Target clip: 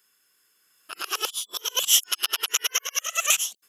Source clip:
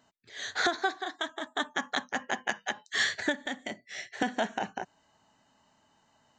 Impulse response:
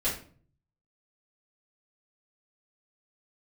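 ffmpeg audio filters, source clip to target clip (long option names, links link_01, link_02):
-af "areverse,asetrate=76440,aresample=44100,dynaudnorm=framelen=610:gausssize=3:maxgain=7.5dB,crystalizer=i=9.5:c=0,volume=-13.5dB"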